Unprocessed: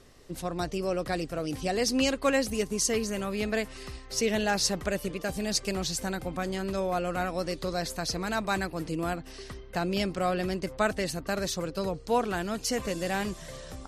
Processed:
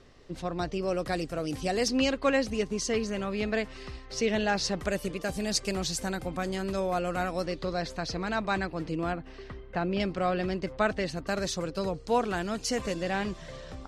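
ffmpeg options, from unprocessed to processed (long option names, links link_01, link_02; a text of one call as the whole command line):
ffmpeg -i in.wav -af "asetnsamples=nb_out_samples=441:pad=0,asendcmd='0.88 lowpass f 11000;1.88 lowpass f 4800;4.79 lowpass f 11000;7.46 lowpass f 4300;9.12 lowpass f 2600;10 lowpass f 4400;11.17 lowpass f 8200;12.94 lowpass f 4500',lowpass=4900" out.wav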